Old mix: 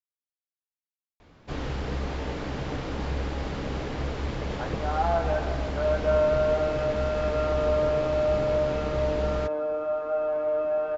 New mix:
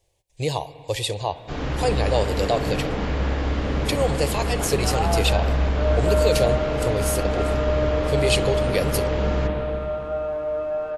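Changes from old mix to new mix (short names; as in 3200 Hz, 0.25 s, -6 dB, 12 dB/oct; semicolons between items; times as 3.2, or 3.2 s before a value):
speech: unmuted; reverb: on, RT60 2.8 s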